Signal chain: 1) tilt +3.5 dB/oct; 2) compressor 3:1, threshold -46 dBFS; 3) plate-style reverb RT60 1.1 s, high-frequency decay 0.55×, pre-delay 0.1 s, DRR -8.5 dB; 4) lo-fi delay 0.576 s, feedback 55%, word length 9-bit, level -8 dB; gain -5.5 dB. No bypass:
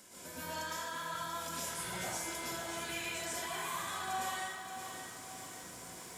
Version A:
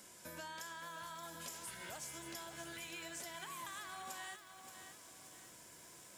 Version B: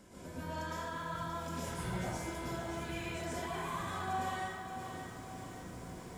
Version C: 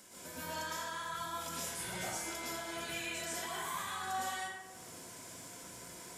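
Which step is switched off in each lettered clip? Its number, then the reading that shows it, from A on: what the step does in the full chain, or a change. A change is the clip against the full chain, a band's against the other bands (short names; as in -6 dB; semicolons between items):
3, 1 kHz band -2.0 dB; 1, 125 Hz band +11.0 dB; 4, momentary loudness spread change +1 LU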